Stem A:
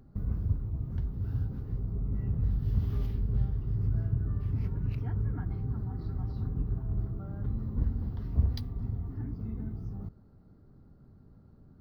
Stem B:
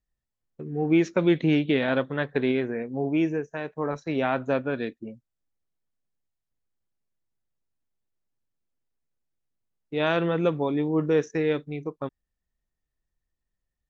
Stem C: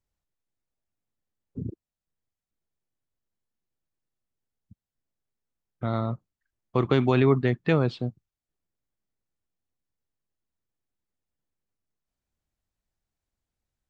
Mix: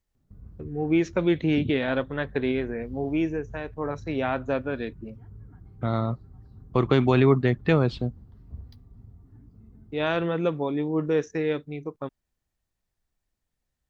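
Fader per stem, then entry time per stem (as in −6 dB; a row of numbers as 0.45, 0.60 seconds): −14.5, −1.5, +1.5 decibels; 0.15, 0.00, 0.00 seconds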